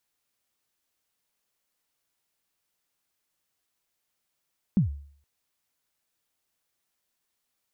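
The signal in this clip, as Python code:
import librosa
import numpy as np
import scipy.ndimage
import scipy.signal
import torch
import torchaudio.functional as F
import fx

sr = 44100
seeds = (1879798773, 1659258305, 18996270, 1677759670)

y = fx.drum_kick(sr, seeds[0], length_s=0.47, level_db=-15, start_hz=220.0, end_hz=71.0, sweep_ms=120.0, decay_s=0.54, click=False)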